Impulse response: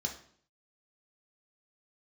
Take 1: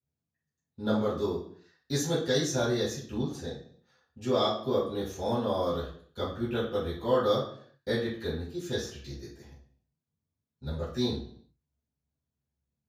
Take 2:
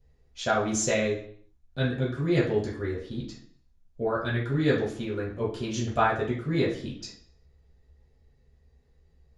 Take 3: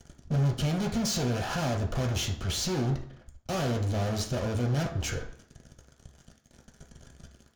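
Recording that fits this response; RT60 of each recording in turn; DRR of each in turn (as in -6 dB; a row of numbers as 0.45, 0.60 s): 3; 0.55, 0.55, 0.55 s; -14.0, -7.5, 1.0 dB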